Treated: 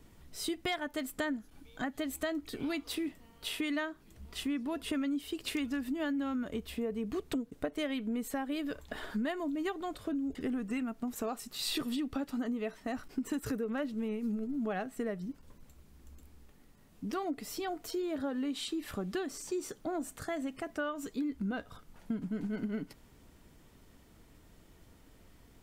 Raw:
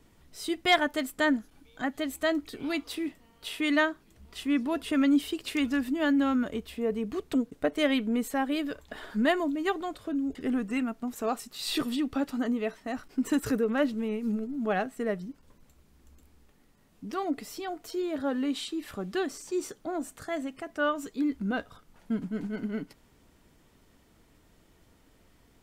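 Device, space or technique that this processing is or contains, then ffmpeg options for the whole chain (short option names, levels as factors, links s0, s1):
ASMR close-microphone chain: -af "lowshelf=f=200:g=4,acompressor=threshold=0.0251:ratio=6,highshelf=f=11000:g=3.5"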